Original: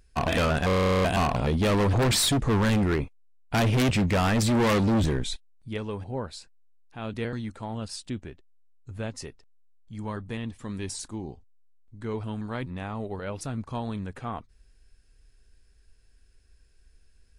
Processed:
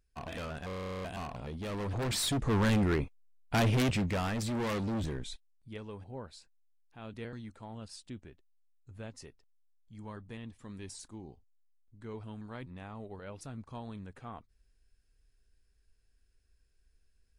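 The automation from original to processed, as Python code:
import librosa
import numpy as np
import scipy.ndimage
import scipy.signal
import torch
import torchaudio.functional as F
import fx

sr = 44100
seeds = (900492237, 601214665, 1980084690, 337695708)

y = fx.gain(x, sr, db=fx.line((1.59, -16.0), (2.64, -4.0), (3.68, -4.0), (4.38, -11.0)))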